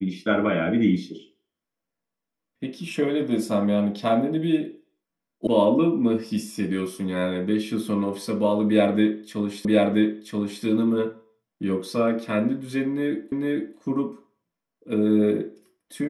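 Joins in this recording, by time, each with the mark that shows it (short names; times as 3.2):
5.47 sound cut off
9.65 repeat of the last 0.98 s
13.32 repeat of the last 0.45 s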